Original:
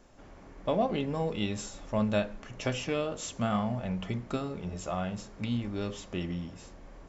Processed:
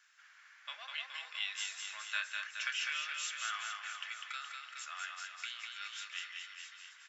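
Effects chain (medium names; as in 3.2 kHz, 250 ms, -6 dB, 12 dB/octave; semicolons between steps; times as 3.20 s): Chebyshev high-pass 1.5 kHz, order 4; treble shelf 2.8 kHz -9.5 dB; reverse bouncing-ball echo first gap 200 ms, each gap 1.1×, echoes 5; trim +6.5 dB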